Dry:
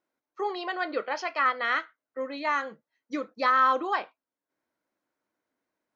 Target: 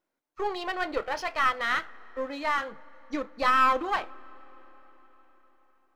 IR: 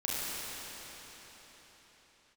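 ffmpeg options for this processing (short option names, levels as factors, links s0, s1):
-filter_complex "[0:a]aeval=exprs='if(lt(val(0),0),0.447*val(0),val(0))':c=same,asplit=2[s0][s1];[1:a]atrim=start_sample=2205,highshelf=f=2900:g=-11[s2];[s1][s2]afir=irnorm=-1:irlink=0,volume=0.0501[s3];[s0][s3]amix=inputs=2:normalize=0,volume=1.33"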